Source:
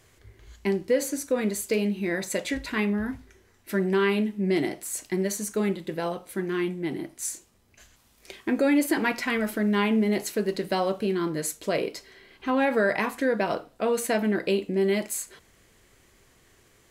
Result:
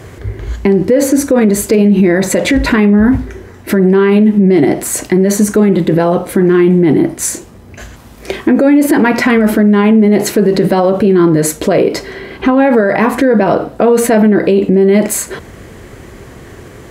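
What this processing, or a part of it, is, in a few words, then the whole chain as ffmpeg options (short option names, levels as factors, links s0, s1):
mastering chain: -af "highpass=47,equalizer=f=1700:t=o:w=0.77:g=2.5,acompressor=threshold=0.0398:ratio=2,tiltshelf=f=1300:g=7.5,alimiter=level_in=15.8:limit=0.891:release=50:level=0:latency=1,volume=0.891"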